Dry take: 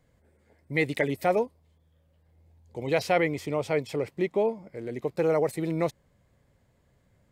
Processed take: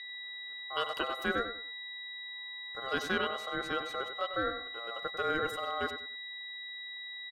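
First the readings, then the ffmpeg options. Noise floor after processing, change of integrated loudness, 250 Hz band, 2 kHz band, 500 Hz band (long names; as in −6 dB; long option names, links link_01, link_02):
−44 dBFS, −7.5 dB, −11.0 dB, −0.5 dB, −11.0 dB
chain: -filter_complex "[0:a]aeval=exprs='val(0)+0.0224*sin(2*PI*2900*n/s)':channel_layout=same,aeval=exprs='val(0)*sin(2*PI*930*n/s)':channel_layout=same,asplit=2[link_01][link_02];[link_02]adelay=95,lowpass=frequency=2300:poles=1,volume=-8.5dB,asplit=2[link_03][link_04];[link_04]adelay=95,lowpass=frequency=2300:poles=1,volume=0.28,asplit=2[link_05][link_06];[link_06]adelay=95,lowpass=frequency=2300:poles=1,volume=0.28[link_07];[link_03][link_05][link_07]amix=inputs=3:normalize=0[link_08];[link_01][link_08]amix=inputs=2:normalize=0,volume=-5.5dB"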